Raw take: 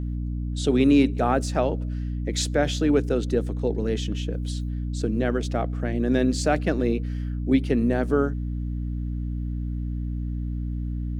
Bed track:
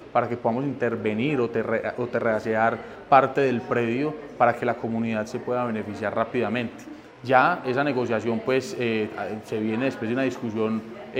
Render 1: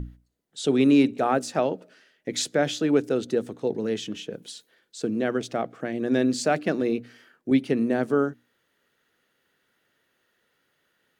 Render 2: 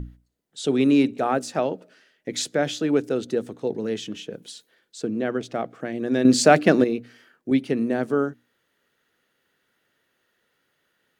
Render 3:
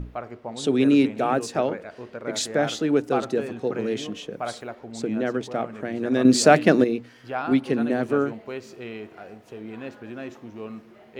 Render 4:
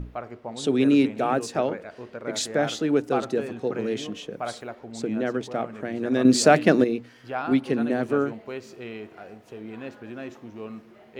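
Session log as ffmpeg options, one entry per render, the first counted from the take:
-af "bandreject=f=60:t=h:w=6,bandreject=f=120:t=h:w=6,bandreject=f=180:t=h:w=6,bandreject=f=240:t=h:w=6,bandreject=f=300:t=h:w=6"
-filter_complex "[0:a]asettb=1/sr,asplit=3[a][b][c];[a]atrim=end=5.014[d];[b]atrim=start=5.01:end=5.54,asetpts=PTS-STARTPTS,afade=t=in:d=0.004:c=qsin,afade=t=out:st=0.526:d=0.004:c=qsin,highshelf=f=4.3k:g=-6.5[e];[c]atrim=start=5.536[f];[d][e]acrossfade=d=0.004:c1=hsin:c2=qsin[g];[g][f]acrossfade=d=0.004:c1=qsin:c2=hsin,asplit=3[h][i][j];[h]atrim=end=6.252[k];[i]atrim=start=6.248:end=6.842,asetpts=PTS-STARTPTS,volume=8.5dB[l];[j]atrim=start=6.838[m];[k][l]acrossfade=d=0.004:c1=hsin:c2=hsin[n];[n][m]acrossfade=d=0.004:c1=hsin:c2=hsin"
-filter_complex "[1:a]volume=-11.5dB[a];[0:a][a]amix=inputs=2:normalize=0"
-af "volume=-1dB,alimiter=limit=-3dB:level=0:latency=1"

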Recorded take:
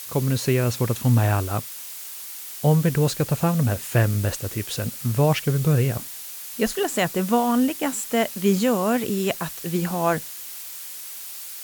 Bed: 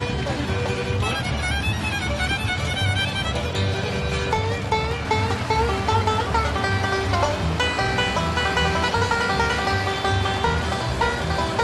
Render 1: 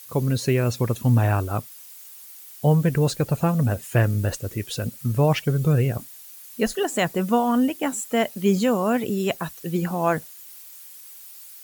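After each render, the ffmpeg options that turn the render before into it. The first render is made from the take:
-af "afftdn=nr=11:nf=-37"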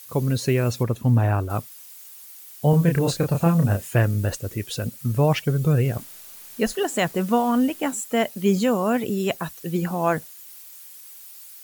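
-filter_complex "[0:a]asettb=1/sr,asplit=3[a][b][c];[a]atrim=end=0.834[d];[b]atrim=start=0.83:end=1.5,asetpts=PTS-STARTPTS,afade=t=in:d=0.004:c=qsin,afade=t=out:st=0.666:d=0.004:c=qsin,highshelf=f=2.5k:g=-8[e];[c]atrim=start=1.496[f];[d][e]acrossfade=d=0.004:c1=hsin:c2=qsin[g];[g][f]acrossfade=d=0.004:c1=qsin:c2=hsin,asettb=1/sr,asplit=3[h][i][j];[h]atrim=end=2.704[k];[i]atrim=start=2.7:end=3.91,asetpts=PTS-STARTPTS,afade=t=in:d=0.004:c=qsin,afade=t=out:st=1.206:d=0.004:c=qsin,asplit=2[l][m];[m]adelay=30,volume=-4dB[n];[l][n]amix=inputs=2:normalize=0,atrim=end_sample=53361[o];[j]atrim=start=3.906[p];[k][o]acrossfade=d=0.004:c1=hsin:c2=qsin[q];[q][p]acrossfade=d=0.004:c1=qsin:c2=hsin,asettb=1/sr,asplit=3[r][s][t];[r]atrim=end=5.854[u];[s]atrim=start=5.85:end=7.91,asetpts=PTS-STARTPTS,afade=t=in:d=0.004:c=qsin,afade=t=out:st=2.056:d=0.004:c=qsin,acrusher=bits=8:dc=4:mix=0:aa=0.000001[v];[t]atrim=start=7.906[w];[u][v]acrossfade=d=0.004:c1=hsin:c2=qsin[x];[x][w]acrossfade=d=0.004:c1=qsin:c2=hsin"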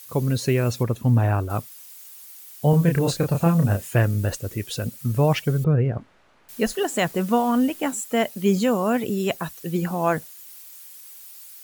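-filter_complex "[0:a]asettb=1/sr,asplit=3[a][b][c];[a]atrim=end=5.644[d];[b]atrim=start=5.64:end=6.49,asetpts=PTS-STARTPTS,afade=t=in:d=0.004:c=qsin,afade=t=out:st=0.846:d=0.004:c=qsin,lowpass=1.6k[e];[c]atrim=start=6.486[f];[d][e]acrossfade=d=0.004:c1=hsin:c2=qsin[g];[g][f]acrossfade=d=0.004:c1=qsin:c2=hsin"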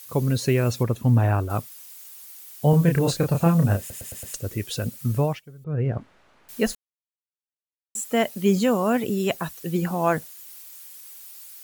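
-filter_complex "[0:a]asplit=10[a][b][c][d][e][f][g][h][i][j];[a]atrim=end=3.902[k];[b]atrim=start=3.788:end=3.902[l];[c]atrim=start=3.788:end=3.902[m];[d]atrim=start=3.788:end=3.902[n];[e]atrim=start=3.788:end=3.902[o];[f]atrim=start=4.338:end=5.41,asetpts=PTS-STARTPTS,afade=t=out:st=0.802:d=0.27:silence=0.0749894[p];[g]atrim=start=5.41:end=5.64,asetpts=PTS-STARTPTS,volume=-22.5dB[q];[h]atrim=start=5.64:end=6.75,asetpts=PTS-STARTPTS,afade=t=in:d=0.27:silence=0.0749894,afade=t=out:st=1.106:d=0.004:c=hsin[r];[i]atrim=start=6.75:end=7.95,asetpts=PTS-STARTPTS,volume=0[s];[j]atrim=start=7.95,asetpts=PTS-STARTPTS,afade=t=in:d=0.004:c=hsin[t];[k][l]acrossfade=d=0.004:c1=hsin:c2=hsin[u];[u][m]acrossfade=d=0.004:c1=hsin:c2=hsin[v];[v][n]acrossfade=d=0.004:c1=hsin:c2=hsin[w];[w][o]acrossfade=d=0.004:c1=hsin:c2=hsin[x];[p][q][r][s][t]concat=n=5:v=0:a=1[y];[x][y]acrossfade=d=0.004:c1=hsin:c2=hsin"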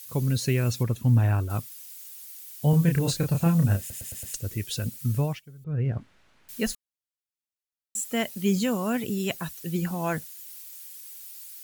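-af "equalizer=f=630:w=0.48:g=-8.5,bandreject=f=1.2k:w=23"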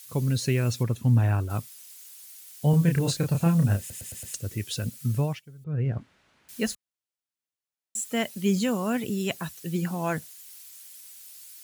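-af "highpass=67,equalizer=f=16k:t=o:w=0.26:g=-12"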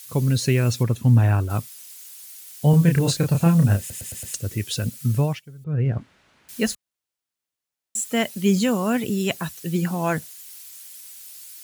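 -af "volume=5dB"

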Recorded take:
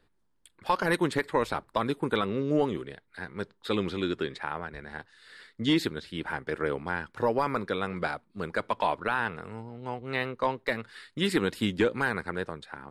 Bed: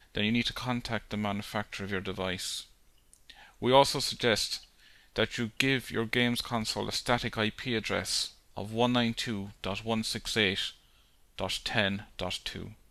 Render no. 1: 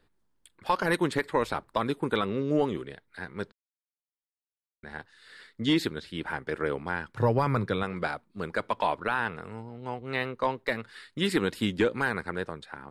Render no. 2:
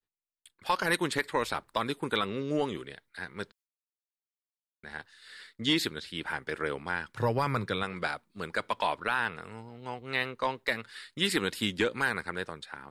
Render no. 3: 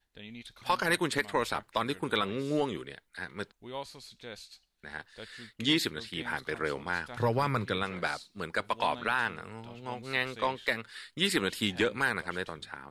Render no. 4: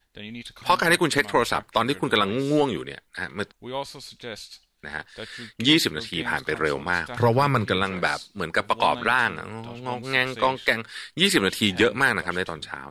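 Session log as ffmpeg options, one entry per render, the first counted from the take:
-filter_complex "[0:a]asettb=1/sr,asplit=3[a][b][c];[a]atrim=end=7.144[d];[b]atrim=start=7.14:end=7.83,asetpts=PTS-STARTPTS,afade=t=in:d=0.004:c=qsin,afade=t=out:st=0.686:d=0.004:c=qsin,equalizer=f=120:w=1.5:g=14.5[e];[c]atrim=start=7.826[f];[d][e]acrossfade=d=0.004:c1=hsin:c2=qsin[g];[g][f]acrossfade=d=0.004:c1=qsin:c2=hsin,asplit=3[h][i][j];[h]atrim=end=3.52,asetpts=PTS-STARTPTS,afade=t=out:st=3.516:d=0.004:c=hsin[k];[i]atrim=start=3.52:end=4.83,asetpts=PTS-STARTPTS,volume=0[l];[j]atrim=start=4.83,asetpts=PTS-STARTPTS,afade=t=in:d=0.004:c=hsin[m];[k][l][m]concat=n=3:v=0:a=1"
-af "agate=range=-33dB:threshold=-54dB:ratio=3:detection=peak,tiltshelf=f=1.5k:g=-5"
-filter_complex "[1:a]volume=-18dB[a];[0:a][a]amix=inputs=2:normalize=0"
-af "volume=8.5dB"

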